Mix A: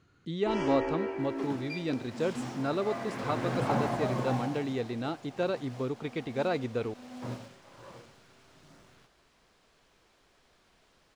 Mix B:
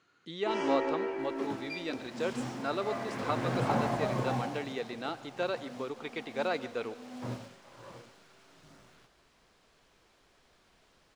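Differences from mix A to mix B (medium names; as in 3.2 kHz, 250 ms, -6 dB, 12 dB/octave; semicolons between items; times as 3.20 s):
speech: add frequency weighting A; first sound: add high-pass 260 Hz 6 dB/octave; reverb: on, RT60 0.45 s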